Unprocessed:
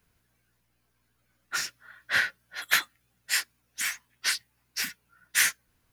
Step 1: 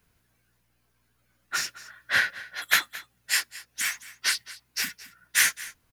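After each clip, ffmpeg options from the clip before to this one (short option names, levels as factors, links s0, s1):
-af "aecho=1:1:218:0.126,volume=1.26"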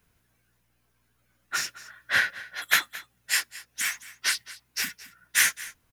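-af "equalizer=f=4500:w=6:g=-3"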